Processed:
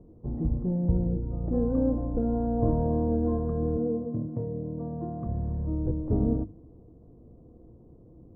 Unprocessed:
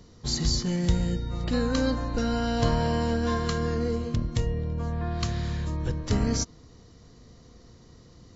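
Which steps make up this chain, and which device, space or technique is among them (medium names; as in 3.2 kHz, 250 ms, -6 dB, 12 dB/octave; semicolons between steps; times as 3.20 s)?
under water (low-pass 710 Hz 24 dB/octave; peaking EQ 320 Hz +9.5 dB 0.22 oct); hum notches 50/100/150/200/250/300/350 Hz; 3.77–5.27 s: high-pass 120 Hz 24 dB/octave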